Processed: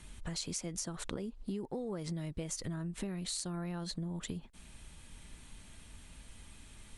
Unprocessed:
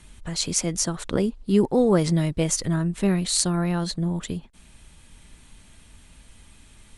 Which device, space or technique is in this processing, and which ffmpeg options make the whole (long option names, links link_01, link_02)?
serial compression, peaks first: -af "acompressor=threshold=-27dB:ratio=6,acompressor=threshold=-35dB:ratio=2.5,volume=-3dB"